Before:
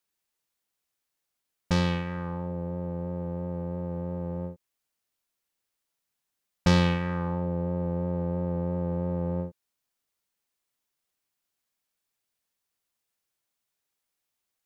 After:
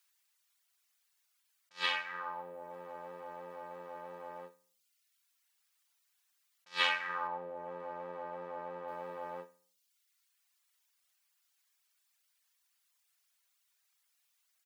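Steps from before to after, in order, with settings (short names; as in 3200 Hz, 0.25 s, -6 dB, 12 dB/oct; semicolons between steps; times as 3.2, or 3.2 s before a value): HPF 1200 Hz 12 dB/oct; feedback echo 61 ms, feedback 43%, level -11.5 dB; on a send at -19 dB: reverb RT60 0.45 s, pre-delay 7 ms; on the sum: reverb removal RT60 0.96 s; 7.27–8.88 LPF 3000 Hz 6 dB/oct; attack slew limiter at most 310 dB/s; gain +8.5 dB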